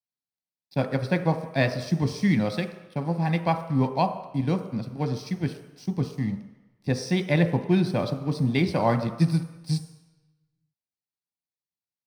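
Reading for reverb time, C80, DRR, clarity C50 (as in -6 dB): 1.0 s, 11.5 dB, 6.0 dB, 10.0 dB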